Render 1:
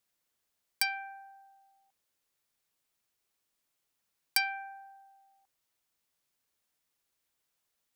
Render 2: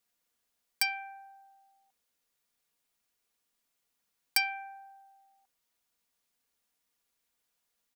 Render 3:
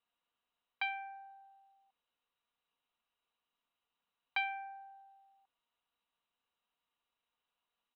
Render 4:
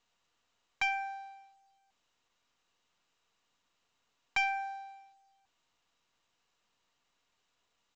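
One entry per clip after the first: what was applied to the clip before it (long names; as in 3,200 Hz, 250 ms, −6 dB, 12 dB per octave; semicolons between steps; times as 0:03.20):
comb filter 4.2 ms, depth 40%
Chebyshev low-pass with heavy ripple 4,000 Hz, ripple 9 dB; level +2 dB
leveller curve on the samples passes 2; mu-law 128 kbit/s 16,000 Hz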